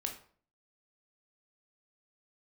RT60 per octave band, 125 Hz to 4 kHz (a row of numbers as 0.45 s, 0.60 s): 0.60 s, 0.55 s, 0.50 s, 0.45 s, 0.40 s, 0.35 s